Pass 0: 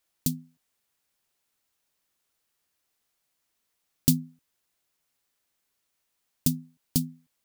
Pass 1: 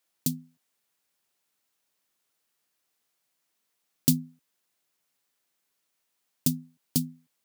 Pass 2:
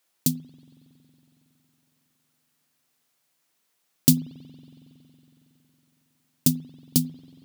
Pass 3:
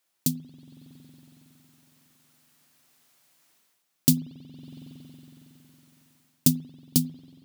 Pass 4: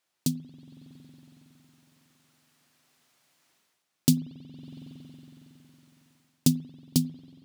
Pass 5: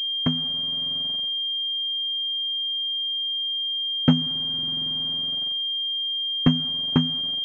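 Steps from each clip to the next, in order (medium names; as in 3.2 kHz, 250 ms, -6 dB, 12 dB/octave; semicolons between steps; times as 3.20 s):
high-pass 130 Hz 12 dB/octave
spring tank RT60 3.8 s, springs 46 ms, chirp 70 ms, DRR 16 dB; trim +5 dB
band-stop 470 Hz, Q 13; level rider gain up to 11.5 dB; trim -3 dB
treble shelf 10 kHz -11.5 dB
word length cut 8-bit, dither none; class-D stage that switches slowly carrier 3.2 kHz; trim +4 dB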